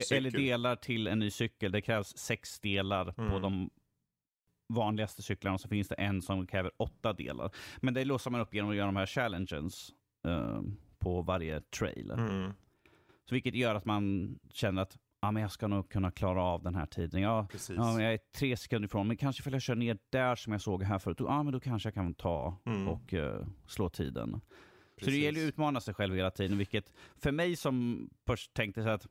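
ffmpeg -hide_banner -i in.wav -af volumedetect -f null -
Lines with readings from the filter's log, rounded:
mean_volume: -34.6 dB
max_volume: -16.5 dB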